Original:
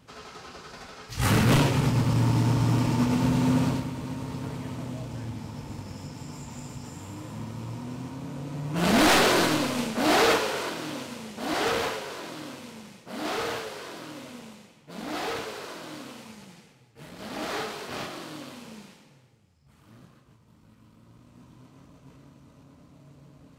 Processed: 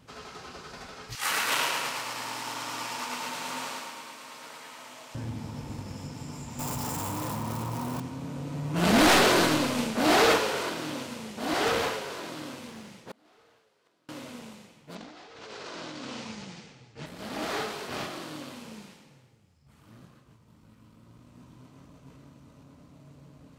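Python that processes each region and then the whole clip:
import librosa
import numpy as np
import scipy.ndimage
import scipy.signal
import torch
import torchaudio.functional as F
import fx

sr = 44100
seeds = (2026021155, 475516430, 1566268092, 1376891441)

y = fx.chain(x, sr, fx.highpass(hz=970.0, slope=12),
    fx.echo_feedback(ms=110, feedback_pct=58, wet_db=-4), at=(1.15, 5.15))
y = fx.chain(y, sr, fx.crossing_spikes(level_db=-34.0),
    fx.peak_eq(hz=930.0, db=9.0, octaves=1.4),
    fx.env_flatten(amount_pct=100), at=(6.59, 8.0))
y = fx.chain(y, sr, fx.gate_flip(shuts_db=-30.0, range_db=-31),
    fx.doppler_dist(depth_ms=0.41), at=(12.67, 14.09))
y = fx.chain(y, sr, fx.lowpass(hz=6500.0, slope=24),
    fx.over_compress(threshold_db=-43.0, ratio=-1.0),
    fx.high_shelf(hz=4400.0, db=5.0), at=(14.95, 17.06))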